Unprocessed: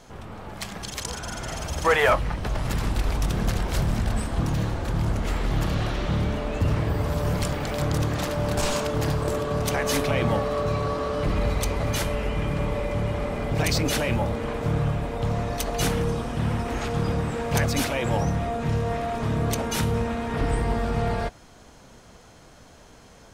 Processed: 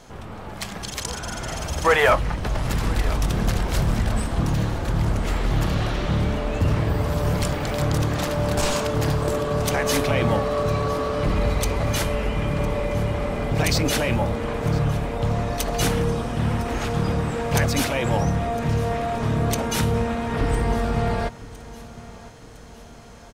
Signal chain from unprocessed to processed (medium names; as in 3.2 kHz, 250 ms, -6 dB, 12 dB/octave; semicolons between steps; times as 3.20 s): feedback delay 1008 ms, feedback 50%, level -19 dB; trim +2.5 dB